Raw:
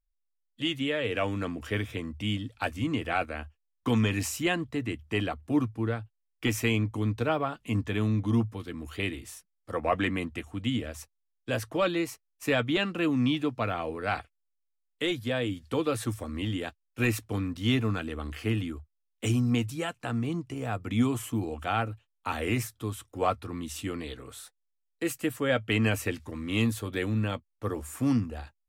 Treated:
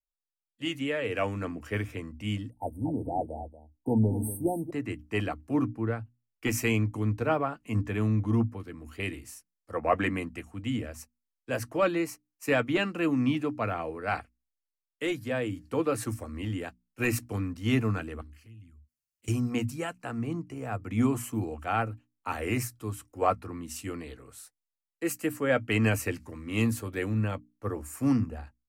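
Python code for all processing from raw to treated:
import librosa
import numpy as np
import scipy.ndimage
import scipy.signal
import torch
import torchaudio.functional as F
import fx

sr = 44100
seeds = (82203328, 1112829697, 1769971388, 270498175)

y = fx.chain(x, sr, fx.brickwall_bandstop(low_hz=940.0, high_hz=8200.0),
    fx.echo_single(ms=236, db=-9.5), at=(2.5, 4.71))
y = fx.chain(y, sr, fx.tone_stack(knobs='6-0-2'),
    fx.env_flanger(rest_ms=11.4, full_db=-40.0),
    fx.env_flatten(amount_pct=50), at=(18.21, 19.28))
y = fx.peak_eq(y, sr, hz=3500.0, db=-13.0, octaves=0.34)
y = fx.hum_notches(y, sr, base_hz=60, count=5)
y = fx.band_widen(y, sr, depth_pct=40)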